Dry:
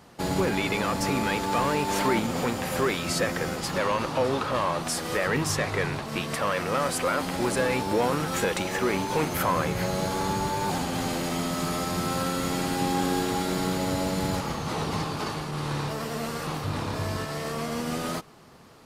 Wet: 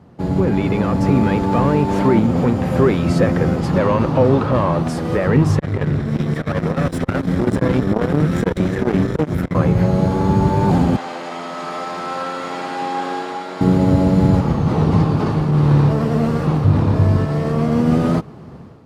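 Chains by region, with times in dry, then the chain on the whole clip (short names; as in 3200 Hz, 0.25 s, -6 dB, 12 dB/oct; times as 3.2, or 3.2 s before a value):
5.59–9.55 minimum comb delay 0.54 ms + core saturation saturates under 690 Hz
10.96–13.61 HPF 820 Hz + air absorption 53 m
whole clip: HPF 93 Hz 12 dB/oct; tilt -4.5 dB/oct; AGC gain up to 10 dB; gain -1 dB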